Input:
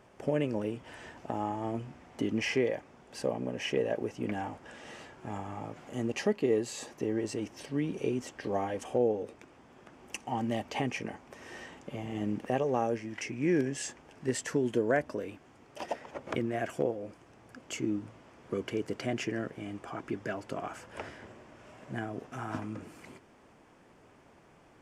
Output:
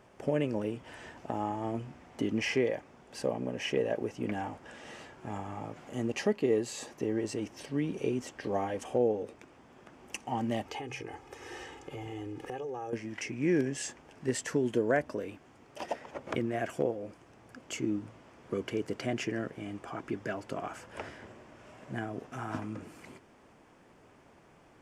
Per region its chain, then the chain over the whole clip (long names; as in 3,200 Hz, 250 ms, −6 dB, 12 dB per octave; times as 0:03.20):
0:10.66–0:12.93: comb filter 2.4 ms, depth 87% + hum removal 66.54 Hz, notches 3 + downward compressor 4 to 1, threshold −37 dBFS
whole clip: no processing